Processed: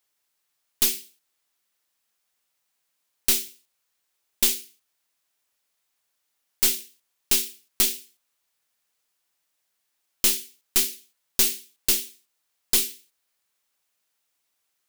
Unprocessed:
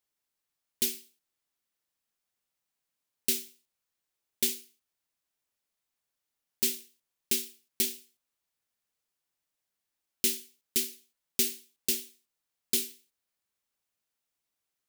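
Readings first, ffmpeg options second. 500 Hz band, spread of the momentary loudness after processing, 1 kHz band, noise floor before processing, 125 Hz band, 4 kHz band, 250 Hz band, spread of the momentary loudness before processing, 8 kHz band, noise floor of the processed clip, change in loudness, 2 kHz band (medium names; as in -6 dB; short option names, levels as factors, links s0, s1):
+3.5 dB, 10 LU, no reading, under -85 dBFS, +6.5 dB, +7.5 dB, +1.5 dB, 12 LU, +7.5 dB, -76 dBFS, +7.5 dB, +8.5 dB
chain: -af "lowshelf=f=390:g=-9,aeval=exprs='0.282*(cos(1*acos(clip(val(0)/0.282,-1,1)))-cos(1*PI/2))+0.0794*(cos(5*acos(clip(val(0)/0.282,-1,1)))-cos(5*PI/2))+0.0398*(cos(6*acos(clip(val(0)/0.282,-1,1)))-cos(6*PI/2))':c=same,volume=1.26"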